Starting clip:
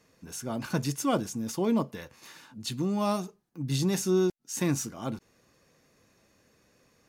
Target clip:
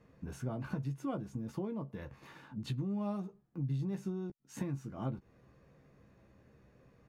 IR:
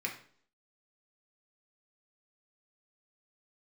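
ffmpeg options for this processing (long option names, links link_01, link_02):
-filter_complex "[0:a]firequalizer=gain_entry='entry(140,0);entry(240,-6);entry(5500,-25)':delay=0.05:min_phase=1,acompressor=threshold=-42dB:ratio=10,asplit=2[link_01][link_02];[link_02]adelay=15,volume=-8dB[link_03];[link_01][link_03]amix=inputs=2:normalize=0,volume=7dB"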